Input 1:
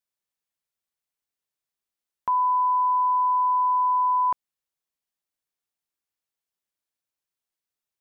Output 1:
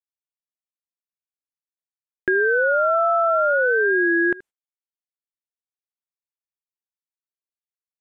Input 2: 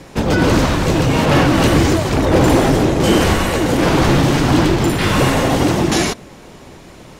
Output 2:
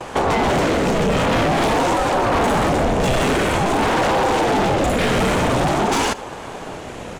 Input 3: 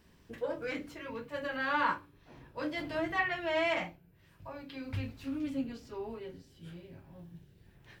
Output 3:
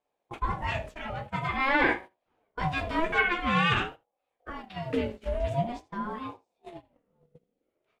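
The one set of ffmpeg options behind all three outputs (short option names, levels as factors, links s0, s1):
-filter_complex "[0:a]equalizer=f=3500:t=o:w=1.9:g=4,agate=range=0.0447:threshold=0.00562:ratio=16:detection=peak,lowpass=8200,aexciter=amount=5.5:drive=4.2:freq=6500,acontrast=28,bass=f=250:g=2,treble=f=4000:g=-12,asoftclip=type=hard:threshold=0.355,asplit=2[s0][s1];[s1]aecho=0:1:78:0.0794[s2];[s0][s2]amix=inputs=2:normalize=0,acompressor=threshold=0.126:ratio=4,aeval=exprs='val(0)*sin(2*PI*490*n/s+490*0.35/0.48*sin(2*PI*0.48*n/s))':c=same,volume=1.5"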